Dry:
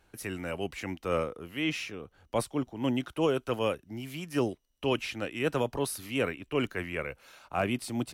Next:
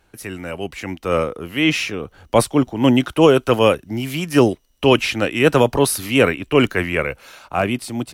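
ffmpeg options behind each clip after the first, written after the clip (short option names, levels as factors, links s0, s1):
-af "dynaudnorm=f=290:g=9:m=2.82,volume=2"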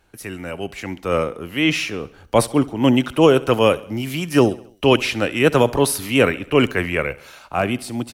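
-af "aecho=1:1:68|136|204|272:0.1|0.052|0.027|0.0141,volume=0.891"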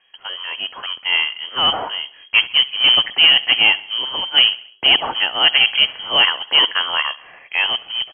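-af "asoftclip=type=hard:threshold=0.531,acrusher=bits=3:mode=log:mix=0:aa=0.000001,lowpass=f=2800:t=q:w=0.5098,lowpass=f=2800:t=q:w=0.6013,lowpass=f=2800:t=q:w=0.9,lowpass=f=2800:t=q:w=2.563,afreqshift=-3300,volume=1.19"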